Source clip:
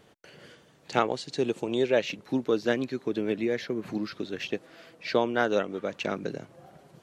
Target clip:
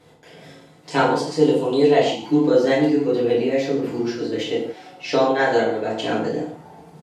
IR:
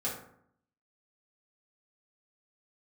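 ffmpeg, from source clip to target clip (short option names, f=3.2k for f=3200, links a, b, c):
-filter_complex "[0:a]asplit=4[a][b][c][d];[b]adelay=161,afreqshift=140,volume=-23dB[e];[c]adelay=322,afreqshift=280,volume=-30.1dB[f];[d]adelay=483,afreqshift=420,volume=-37.3dB[g];[a][e][f][g]amix=inputs=4:normalize=0,asetrate=49501,aresample=44100,atempo=0.890899[h];[1:a]atrim=start_sample=2205,afade=t=out:st=0.16:d=0.01,atrim=end_sample=7497,asetrate=26460,aresample=44100[i];[h][i]afir=irnorm=-1:irlink=0"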